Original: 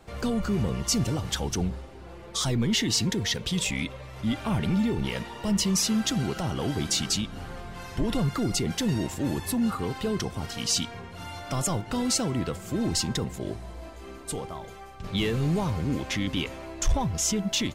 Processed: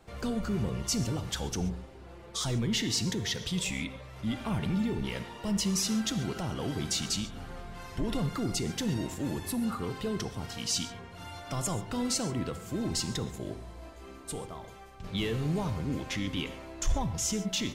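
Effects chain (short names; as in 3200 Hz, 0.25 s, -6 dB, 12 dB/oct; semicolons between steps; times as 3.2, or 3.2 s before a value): non-linear reverb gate 0.16 s flat, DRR 11 dB; gain -5 dB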